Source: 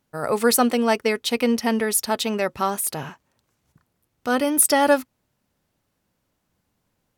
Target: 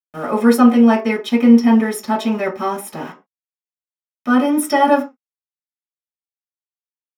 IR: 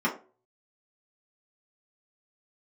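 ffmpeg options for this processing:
-filter_complex "[0:a]aeval=exprs='val(0)*gte(abs(val(0)),0.0168)':c=same[a];[1:a]atrim=start_sample=2205,afade=t=out:st=0.19:d=0.01,atrim=end_sample=8820[b];[a][b]afir=irnorm=-1:irlink=0,volume=-9dB"

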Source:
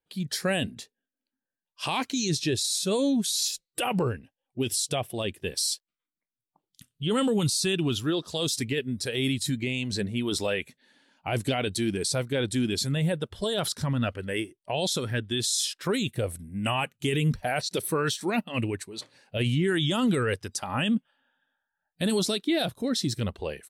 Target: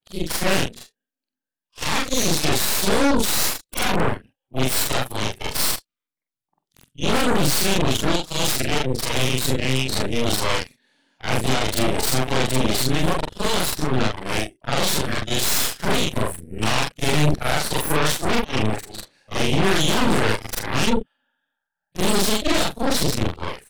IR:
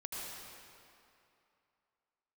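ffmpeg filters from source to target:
-af "afftfilt=real='re':imag='-im':win_size=4096:overlap=0.75,aeval=exprs='0.133*(cos(1*acos(clip(val(0)/0.133,-1,1)))-cos(1*PI/2))+0.00668*(cos(7*acos(clip(val(0)/0.133,-1,1)))-cos(7*PI/2))+0.0473*(cos(8*acos(clip(val(0)/0.133,-1,1)))-cos(8*PI/2))':c=same,volume=7dB"

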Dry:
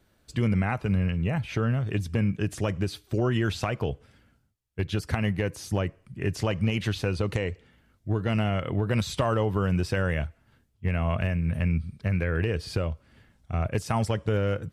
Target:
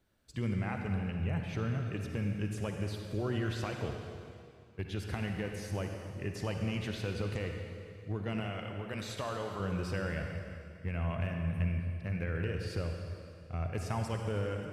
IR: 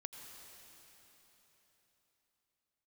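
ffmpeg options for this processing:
-filter_complex "[0:a]asettb=1/sr,asplit=3[a][b][c];[a]atrim=end=8.404[d];[b]atrim=start=8.4:end=9.6,asetpts=PTS-STARTPTS,afade=t=in:d=0.004:c=qsin,afade=t=out:st=1.196:d=0.004:c=qsin,lowshelf=f=370:g=-9.5[e];[c]atrim=start=9.596[f];[d][e]acrossfade=d=0.004:c1=hsin:c2=qsin[g];[g][f]acrossfade=d=0.004:c1=qsin:c2=hsin[h];[1:a]atrim=start_sample=2205,asetrate=74970,aresample=44100[i];[h][i]afir=irnorm=-1:irlink=0"

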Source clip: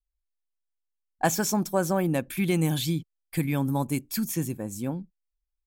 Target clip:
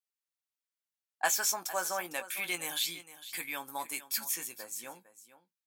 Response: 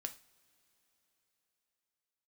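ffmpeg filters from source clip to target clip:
-filter_complex "[0:a]highpass=1.1k,asplit=2[a][b];[b]adelay=17,volume=-9dB[c];[a][c]amix=inputs=2:normalize=0,asplit=2[d][e];[e]aecho=0:1:455:0.178[f];[d][f]amix=inputs=2:normalize=0"

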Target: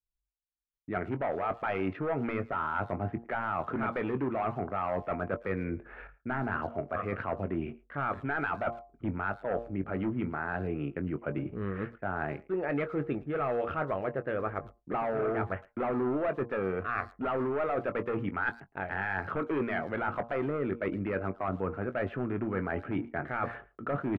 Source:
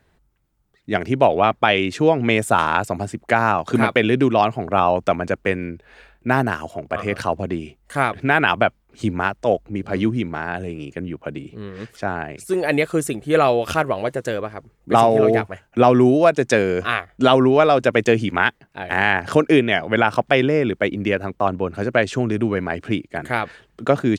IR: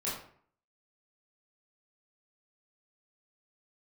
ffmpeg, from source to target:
-filter_complex "[0:a]aresample=16000,asoftclip=type=hard:threshold=-14dB,aresample=44100,agate=range=-33dB:threshold=-48dB:ratio=3:detection=peak,alimiter=limit=-15.5dB:level=0:latency=1:release=245,lowpass=f=2.2k:w=0.5412,lowpass=f=2.2k:w=1.3066,equalizer=f=1.3k:t=o:w=0.22:g=7.5,bandreject=f=116.9:t=h:w=4,bandreject=f=233.8:t=h:w=4,bandreject=f=350.7:t=h:w=4,bandreject=f=467.6:t=h:w=4,bandreject=f=584.5:t=h:w=4,bandreject=f=701.4:t=h:w=4,bandreject=f=818.3:t=h:w=4,bandreject=f=935.2:t=h:w=4,bandreject=f=1.0521k:t=h:w=4,bandreject=f=1.169k:t=h:w=4,areverse,acompressor=threshold=-29dB:ratio=8,areverse,anlmdn=0.00631,asplit=2[a][b];[b]adelay=21,volume=-11.5dB[c];[a][c]amix=inputs=2:normalize=0,asplit=2[d][e];[e]adelay=110,highpass=300,lowpass=3.4k,asoftclip=type=hard:threshold=-27dB,volume=-21dB[f];[d][f]amix=inputs=2:normalize=0"

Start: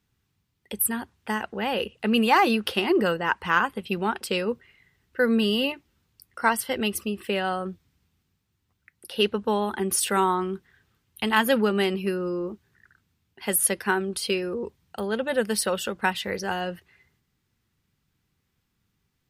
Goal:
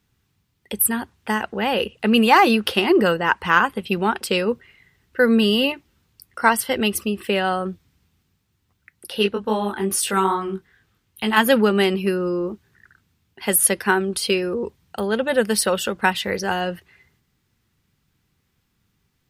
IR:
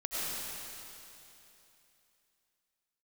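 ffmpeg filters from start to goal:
-filter_complex "[0:a]asplit=3[a][b][c];[a]afade=t=out:st=9.18:d=0.02[d];[b]flanger=delay=18:depth=3.7:speed=2.4,afade=t=in:st=9.18:d=0.02,afade=t=out:st=11.36:d=0.02[e];[c]afade=t=in:st=11.36:d=0.02[f];[d][e][f]amix=inputs=3:normalize=0,volume=5.5dB"

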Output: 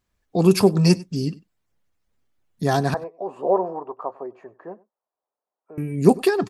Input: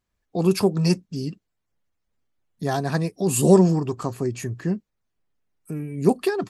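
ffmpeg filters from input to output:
-filter_complex "[0:a]asettb=1/sr,asplit=3[a][b][c];[a]atrim=end=2.944[d];[b]atrim=start=2.94:end=5.78,asetpts=PTS-STARTPTS,afade=t=in:d=0.004:c=qsin,afade=t=out:st=2.836:d=0.004:c=qsin,asuperpass=centerf=750:order=4:qfactor=1.3[e];[c]atrim=start=5.776[f];[d][e]acrossfade=d=0.004:c1=hsin:c2=qsin[g];[g][f]acrossfade=d=0.004:c1=qsin:c2=hsin,aecho=1:1:97:0.075,volume=4dB"

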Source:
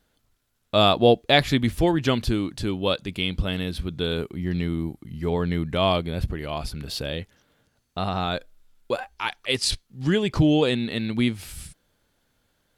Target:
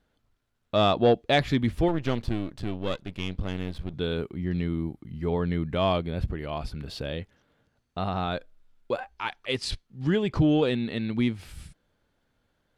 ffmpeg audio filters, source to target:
-filter_complex "[0:a]asettb=1/sr,asplit=3[a][b][c];[a]atrim=end=1.884[d];[b]atrim=start=1.88:end=3.94,asetpts=PTS-STARTPTS,afade=t=in:d=0.004:c=qsin,afade=t=out:st=2.056:d=0.004:c=qsin,aeval=exprs='if(lt(val(0),0),0.251*val(0),val(0))':c=same[e];[c]atrim=start=3.936[f];[d][e]acrossfade=d=0.004:c1=hsin:c2=qsin[g];[g][f]acrossfade=d=0.004:c1=qsin:c2=hsin,lowpass=f=2.4k:p=1,asoftclip=type=tanh:threshold=-8dB,volume=-2dB"

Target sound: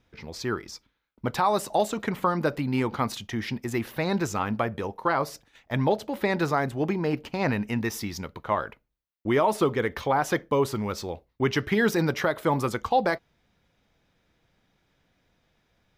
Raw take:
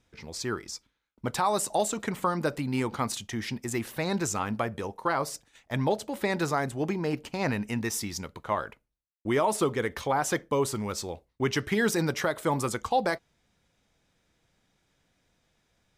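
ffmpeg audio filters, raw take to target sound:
-af "equalizer=f=8.3k:w=1.1:g=-12,volume=3dB"

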